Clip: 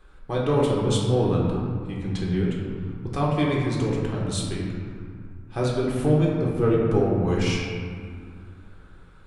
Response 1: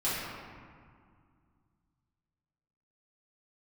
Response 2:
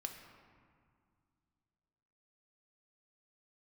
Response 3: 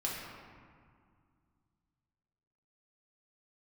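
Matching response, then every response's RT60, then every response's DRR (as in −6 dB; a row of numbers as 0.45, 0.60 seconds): 3; 2.1, 2.1, 2.1 seconds; −12.0, 4.0, −4.5 decibels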